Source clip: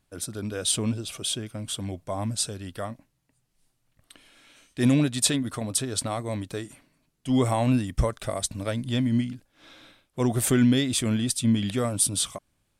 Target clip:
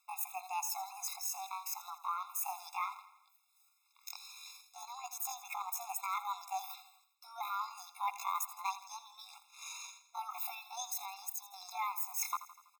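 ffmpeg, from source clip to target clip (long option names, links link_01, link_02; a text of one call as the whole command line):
ffmpeg -i in.wav -filter_complex "[0:a]acrossover=split=490|2300[link_01][link_02][link_03];[link_01]aeval=exprs='val(0)*gte(abs(val(0)),0.00376)':channel_layout=same[link_04];[link_04][link_02][link_03]amix=inputs=3:normalize=0,alimiter=limit=-17dB:level=0:latency=1:release=34,areverse,acompressor=threshold=-40dB:ratio=6,areverse,asetrate=78577,aresample=44100,atempo=0.561231,aecho=1:1:82|164|246|328|410:0.178|0.0978|0.0538|0.0296|0.0163,afftfilt=real='re*eq(mod(floor(b*sr/1024/690),2),1)':imag='im*eq(mod(floor(b*sr/1024/690),2),1)':win_size=1024:overlap=0.75,volume=8.5dB" out.wav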